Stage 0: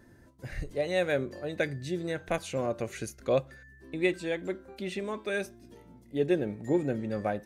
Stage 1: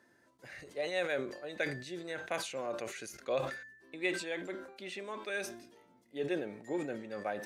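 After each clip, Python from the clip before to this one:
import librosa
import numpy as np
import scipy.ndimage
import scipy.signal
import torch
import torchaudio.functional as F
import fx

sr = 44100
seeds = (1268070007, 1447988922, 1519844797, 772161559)

y = fx.weighting(x, sr, curve='A')
y = fx.sustainer(y, sr, db_per_s=76.0)
y = F.gain(torch.from_numpy(y), -4.5).numpy()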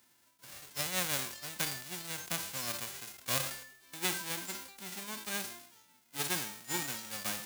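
y = fx.envelope_flatten(x, sr, power=0.1)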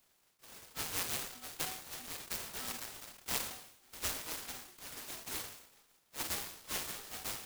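y = fx.band_swap(x, sr, width_hz=4000)
y = fx.noise_mod_delay(y, sr, seeds[0], noise_hz=2600.0, depth_ms=0.12)
y = F.gain(torch.from_numpy(y), -3.0).numpy()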